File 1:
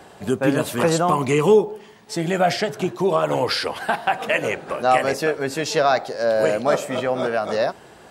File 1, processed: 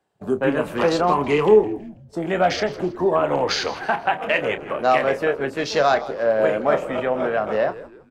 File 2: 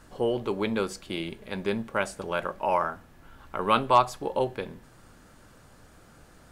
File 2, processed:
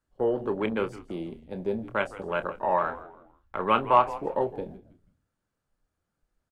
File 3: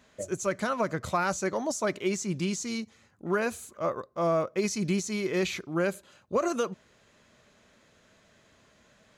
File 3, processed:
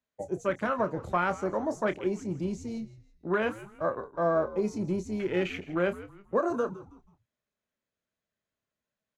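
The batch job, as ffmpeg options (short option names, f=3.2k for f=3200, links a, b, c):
-filter_complex "[0:a]afwtdn=0.02,agate=range=-13dB:threshold=-43dB:ratio=16:detection=peak,acrossover=split=200[a][b];[a]asoftclip=type=tanh:threshold=-38.5dB[c];[c][b]amix=inputs=2:normalize=0,asplit=2[d][e];[e]adelay=28,volume=-11dB[f];[d][f]amix=inputs=2:normalize=0,asplit=4[g][h][i][j];[h]adelay=162,afreqshift=-99,volume=-16.5dB[k];[i]adelay=324,afreqshift=-198,volume=-25.4dB[l];[j]adelay=486,afreqshift=-297,volume=-34.2dB[m];[g][k][l][m]amix=inputs=4:normalize=0"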